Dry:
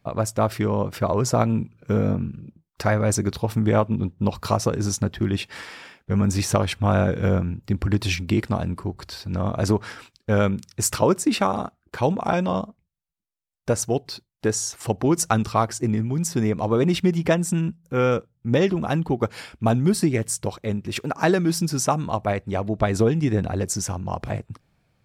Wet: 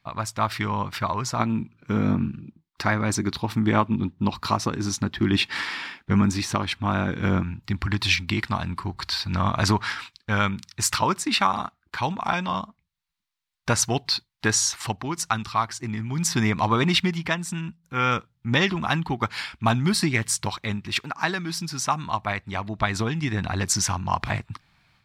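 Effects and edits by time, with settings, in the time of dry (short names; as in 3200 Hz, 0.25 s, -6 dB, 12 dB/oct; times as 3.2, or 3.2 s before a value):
1.39–7.43 bell 300 Hz +10 dB 1.5 oct
whole clip: graphic EQ 500/1000/2000/4000 Hz -11/+9/+7/+10 dB; AGC; gain -6.5 dB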